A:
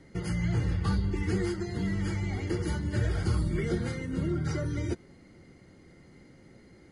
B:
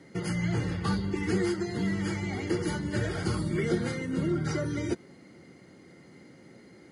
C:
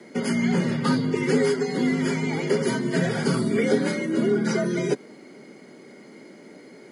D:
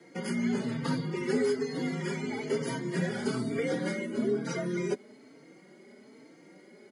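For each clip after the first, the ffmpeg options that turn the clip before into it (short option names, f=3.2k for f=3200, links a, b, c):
-af "highpass=150,volume=3.5dB"
-af "afreqshift=61,volume=6.5dB"
-filter_complex "[0:a]asplit=2[a][b];[b]adelay=3.9,afreqshift=1.1[c];[a][c]amix=inputs=2:normalize=1,volume=-5dB"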